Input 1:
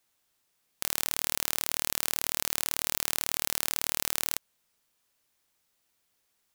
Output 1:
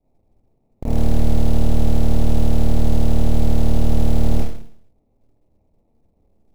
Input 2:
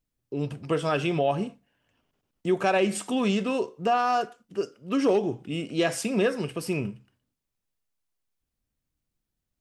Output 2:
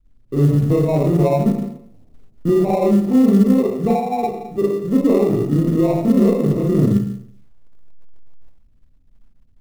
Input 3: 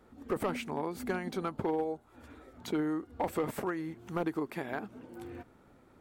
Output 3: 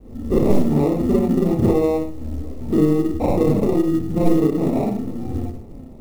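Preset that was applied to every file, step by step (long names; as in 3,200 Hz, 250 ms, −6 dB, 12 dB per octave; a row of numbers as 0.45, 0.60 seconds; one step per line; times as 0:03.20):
Butterworth low-pass 850 Hz 72 dB per octave
four-comb reverb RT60 0.6 s, combs from 27 ms, DRR −8 dB
in parallel at −3.5 dB: decimation without filtering 28×
on the sum: downward compressor 2.5 to 1, threshold −20 dBFS
spectral tilt −4 dB per octave
floating-point word with a short mantissa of 4 bits
normalise the peak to −3 dBFS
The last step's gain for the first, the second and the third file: +3.5, −1.0, +1.0 decibels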